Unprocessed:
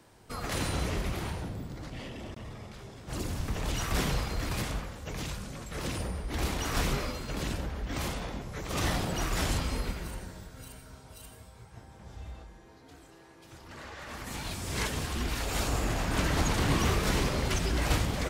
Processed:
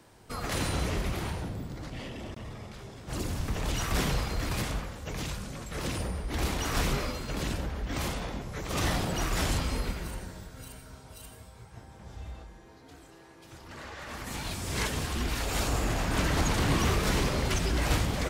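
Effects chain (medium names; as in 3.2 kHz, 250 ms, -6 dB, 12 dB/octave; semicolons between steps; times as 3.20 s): saturation -16.5 dBFS, distortion -26 dB; trim +1.5 dB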